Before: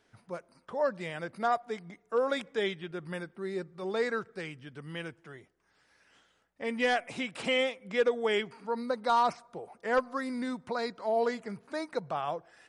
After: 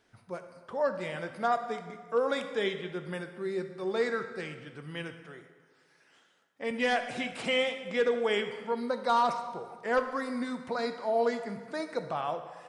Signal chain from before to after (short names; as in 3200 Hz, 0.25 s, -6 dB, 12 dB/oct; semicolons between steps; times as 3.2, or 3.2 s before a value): 5.21–6.71 HPF 170 Hz 12 dB/oct; plate-style reverb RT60 1.6 s, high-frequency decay 0.75×, DRR 7.5 dB